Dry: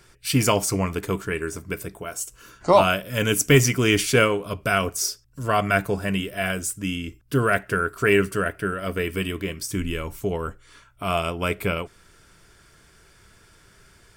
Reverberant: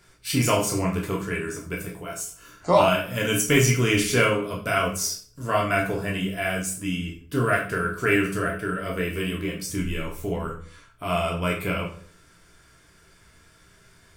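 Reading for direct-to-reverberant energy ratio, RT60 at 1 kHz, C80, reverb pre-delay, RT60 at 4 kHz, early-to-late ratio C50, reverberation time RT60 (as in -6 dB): -2.0 dB, 0.50 s, 12.0 dB, 10 ms, 0.40 s, 7.5 dB, 0.55 s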